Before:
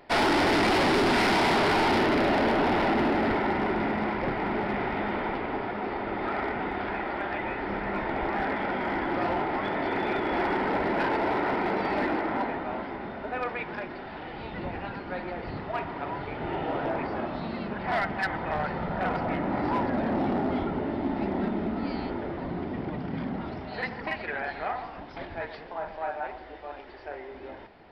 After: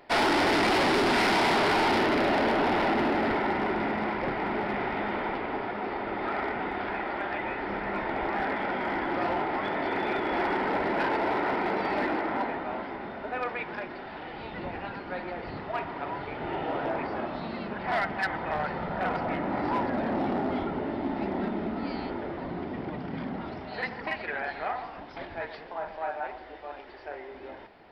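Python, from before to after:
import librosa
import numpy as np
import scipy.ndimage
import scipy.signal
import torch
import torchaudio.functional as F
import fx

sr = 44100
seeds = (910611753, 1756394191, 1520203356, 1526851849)

y = fx.low_shelf(x, sr, hz=210.0, db=-5.5)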